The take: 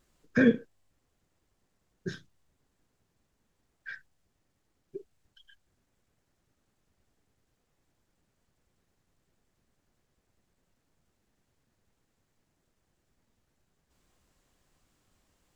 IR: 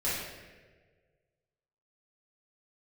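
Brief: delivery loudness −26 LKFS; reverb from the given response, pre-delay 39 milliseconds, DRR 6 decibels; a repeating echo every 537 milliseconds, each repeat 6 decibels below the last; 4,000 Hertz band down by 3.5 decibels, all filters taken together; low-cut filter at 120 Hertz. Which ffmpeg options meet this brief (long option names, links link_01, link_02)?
-filter_complex "[0:a]highpass=120,equalizer=frequency=4000:width_type=o:gain=-4.5,aecho=1:1:537|1074|1611|2148|2685|3222:0.501|0.251|0.125|0.0626|0.0313|0.0157,asplit=2[link_01][link_02];[1:a]atrim=start_sample=2205,adelay=39[link_03];[link_02][link_03]afir=irnorm=-1:irlink=0,volume=-14.5dB[link_04];[link_01][link_04]amix=inputs=2:normalize=0,volume=6dB"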